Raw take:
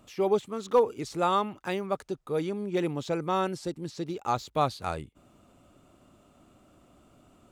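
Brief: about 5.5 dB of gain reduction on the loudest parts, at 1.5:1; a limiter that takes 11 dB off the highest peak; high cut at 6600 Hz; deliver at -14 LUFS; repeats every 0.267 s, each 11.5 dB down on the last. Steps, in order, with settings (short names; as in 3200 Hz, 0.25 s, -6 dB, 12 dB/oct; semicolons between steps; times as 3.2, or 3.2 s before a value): LPF 6600 Hz; compressor 1.5:1, threshold -32 dBFS; limiter -28 dBFS; feedback echo 0.267 s, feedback 27%, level -11.5 dB; gain +24 dB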